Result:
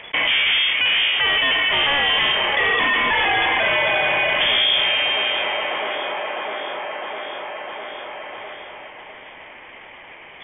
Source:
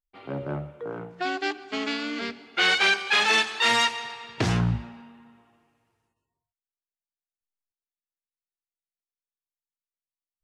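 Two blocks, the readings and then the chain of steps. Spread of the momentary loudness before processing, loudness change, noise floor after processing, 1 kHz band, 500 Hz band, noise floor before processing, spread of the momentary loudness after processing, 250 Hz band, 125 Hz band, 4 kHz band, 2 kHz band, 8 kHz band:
16 LU, +7.0 dB, −41 dBFS, +7.5 dB, +8.5 dB, below −85 dBFS, 17 LU, −3.5 dB, −10.5 dB, +11.0 dB, +8.5 dB, below −40 dB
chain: lower of the sound and its delayed copy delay 0.74 ms
mid-hump overdrive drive 37 dB, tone 1,200 Hz, clips at −10.5 dBFS
voice inversion scrambler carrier 3,400 Hz
on a send: delay with a band-pass on its return 654 ms, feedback 40%, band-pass 600 Hz, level −6 dB
on the sum: envelope flattener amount 70%

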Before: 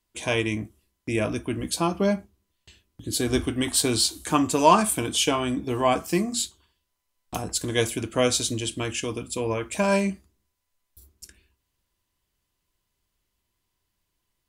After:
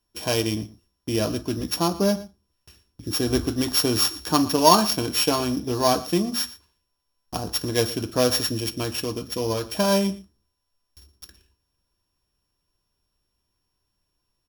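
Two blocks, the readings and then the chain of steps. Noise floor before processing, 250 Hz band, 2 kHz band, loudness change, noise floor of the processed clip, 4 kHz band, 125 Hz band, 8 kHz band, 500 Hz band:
−79 dBFS, +1.5 dB, −2.5 dB, +1.5 dB, −77 dBFS, +3.5 dB, +1.5 dB, −1.0 dB, +1.5 dB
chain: samples sorted by size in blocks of 8 samples
parametric band 2,100 Hz −10 dB 0.26 octaves
on a send: single-tap delay 117 ms −18.5 dB
on the sum: level +1.5 dB

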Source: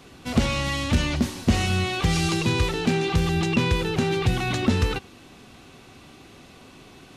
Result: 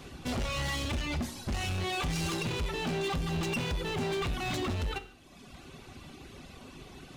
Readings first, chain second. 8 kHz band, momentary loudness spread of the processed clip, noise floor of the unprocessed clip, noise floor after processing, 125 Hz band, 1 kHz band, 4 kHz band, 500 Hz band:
−7.5 dB, 17 LU, −49 dBFS, −52 dBFS, −10.5 dB, −7.5 dB, −7.5 dB, −8.5 dB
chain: reverb reduction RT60 1.1 s
low-shelf EQ 95 Hz +8.5 dB
downward compressor 3 to 1, threshold −24 dBFS, peak gain reduction 10 dB
hard clipping −30.5 dBFS, distortion −5 dB
reverb whose tail is shaped and stops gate 210 ms falling, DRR 9 dB

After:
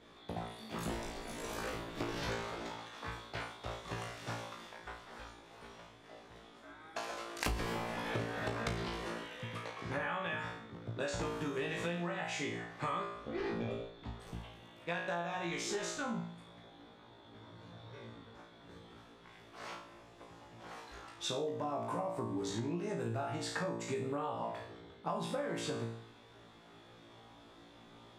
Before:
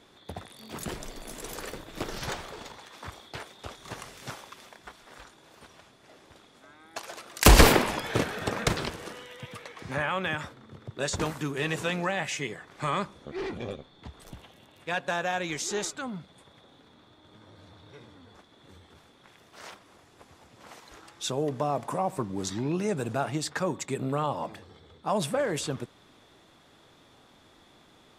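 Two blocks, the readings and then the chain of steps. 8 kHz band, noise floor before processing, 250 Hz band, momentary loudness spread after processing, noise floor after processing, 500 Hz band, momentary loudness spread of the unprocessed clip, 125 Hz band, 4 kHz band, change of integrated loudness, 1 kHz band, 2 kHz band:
−13.5 dB, −58 dBFS, −8.0 dB, 19 LU, −58 dBFS, −8.0 dB, 16 LU, −10.0 dB, −10.5 dB, −11.0 dB, −8.5 dB, −9.0 dB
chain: low-pass filter 3,200 Hz 6 dB per octave
on a send: flutter between parallel walls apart 3 metres, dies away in 0.52 s
on the sum: downward compressor 12 to 1, threshold −30 dBFS, peak gain reduction 24.5 dB
level −3.5 dB

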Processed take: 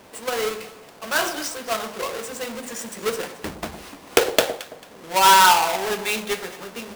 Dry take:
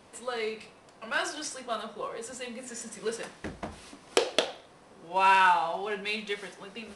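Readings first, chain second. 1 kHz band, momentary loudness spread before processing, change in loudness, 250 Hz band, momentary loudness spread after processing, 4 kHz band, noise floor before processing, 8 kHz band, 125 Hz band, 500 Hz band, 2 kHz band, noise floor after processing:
+8.0 dB, 19 LU, +8.5 dB, +7.5 dB, 20 LU, +10.5 dB, −56 dBFS, +13.5 dB, +8.0 dB, +8.0 dB, +6.5 dB, −46 dBFS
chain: each half-wave held at its own peak
low-shelf EQ 230 Hz −7 dB
delay that swaps between a low-pass and a high-pass 111 ms, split 1,100 Hz, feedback 53%, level −11 dB
level +4.5 dB

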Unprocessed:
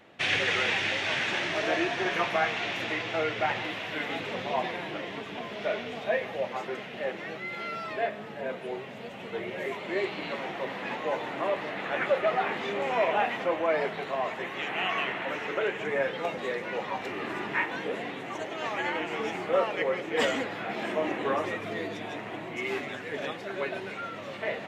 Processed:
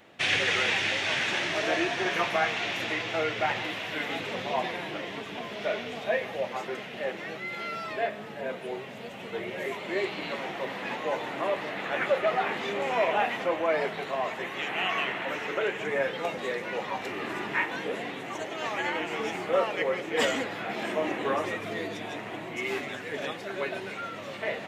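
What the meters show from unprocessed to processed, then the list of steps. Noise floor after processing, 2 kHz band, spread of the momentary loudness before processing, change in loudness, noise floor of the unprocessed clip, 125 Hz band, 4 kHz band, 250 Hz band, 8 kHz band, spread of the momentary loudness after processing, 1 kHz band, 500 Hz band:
−40 dBFS, +1.0 dB, 9 LU, +0.5 dB, −40 dBFS, 0.0 dB, +2.0 dB, 0.0 dB, can't be measured, 10 LU, 0.0 dB, 0.0 dB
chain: high-shelf EQ 5,400 Hz +7 dB

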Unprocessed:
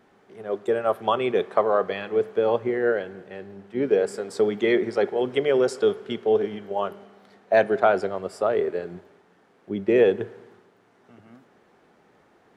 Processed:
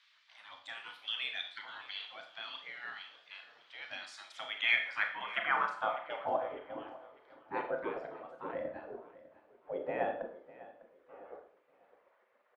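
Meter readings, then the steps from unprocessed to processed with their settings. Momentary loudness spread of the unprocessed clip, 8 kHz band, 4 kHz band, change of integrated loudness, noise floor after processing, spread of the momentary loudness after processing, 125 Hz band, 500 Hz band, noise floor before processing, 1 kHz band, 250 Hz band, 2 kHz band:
12 LU, can't be measured, −1.0 dB, −13.5 dB, −70 dBFS, 21 LU, −22.0 dB, −20.0 dB, −60 dBFS, −10.0 dB, −22.5 dB, −3.5 dB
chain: RIAA equalisation playback
reverb reduction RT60 0.68 s
low-shelf EQ 340 Hz +5.5 dB
gate on every frequency bin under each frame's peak −25 dB weak
in parallel at −0.5 dB: downward compressor, threshold −52 dBFS, peak gain reduction 20.5 dB
on the sum: band-pass filter sweep 4,100 Hz → 480 Hz, 0:04.16–0:06.69
repeating echo 601 ms, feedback 35%, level −18.5 dB
four-comb reverb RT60 0.5 s, combs from 26 ms, DRR 4.5 dB
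level +9 dB

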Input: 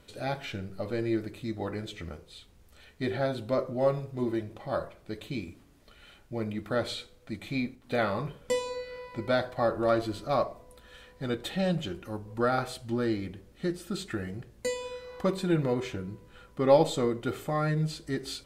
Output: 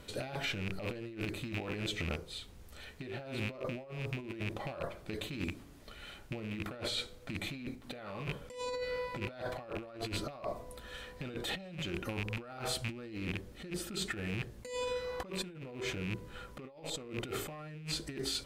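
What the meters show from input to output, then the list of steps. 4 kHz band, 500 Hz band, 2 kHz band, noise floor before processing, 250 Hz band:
+0.5 dB, −11.5 dB, −2.5 dB, −58 dBFS, −10.0 dB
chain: loose part that buzzes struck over −40 dBFS, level −30 dBFS
compressor whose output falls as the input rises −39 dBFS, ratio −1
level −2 dB

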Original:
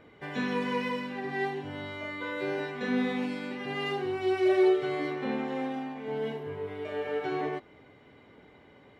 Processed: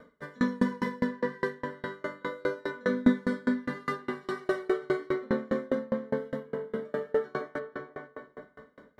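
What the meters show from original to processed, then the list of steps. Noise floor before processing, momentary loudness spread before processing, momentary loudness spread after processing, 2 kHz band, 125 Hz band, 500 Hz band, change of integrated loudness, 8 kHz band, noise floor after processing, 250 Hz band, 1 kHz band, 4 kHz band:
−56 dBFS, 12 LU, 12 LU, −1.0 dB, +1.0 dB, −1.5 dB, −0.5 dB, can't be measured, −61 dBFS, +2.0 dB, −2.5 dB, −7.5 dB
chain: phaser with its sweep stopped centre 520 Hz, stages 8
on a send: feedback echo with a low-pass in the loop 481 ms, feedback 30%, low-pass 2,000 Hz, level −4 dB
on the sum: spring reverb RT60 2.6 s, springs 36/56 ms, chirp 35 ms, DRR 3.5 dB
tremolo with a ramp in dB decaying 4.9 Hz, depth 31 dB
level +9 dB

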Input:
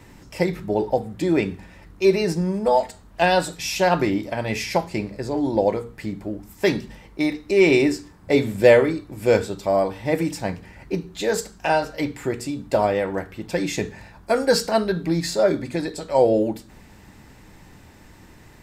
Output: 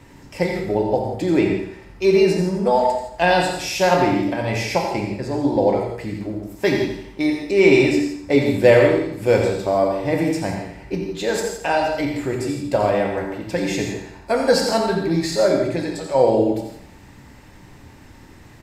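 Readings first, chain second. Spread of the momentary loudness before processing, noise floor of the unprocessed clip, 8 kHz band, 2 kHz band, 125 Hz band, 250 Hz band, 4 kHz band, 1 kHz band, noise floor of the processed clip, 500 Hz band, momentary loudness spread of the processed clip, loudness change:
12 LU, −48 dBFS, +1.0 dB, +2.5 dB, +3.0 dB, +3.0 dB, +2.0 dB, +2.5 dB, −45 dBFS, +2.5 dB, 11 LU, +2.5 dB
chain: high-shelf EQ 9,100 Hz −5 dB
repeating echo 86 ms, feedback 42%, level −9 dB
reverb whose tail is shaped and stops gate 190 ms flat, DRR 2 dB

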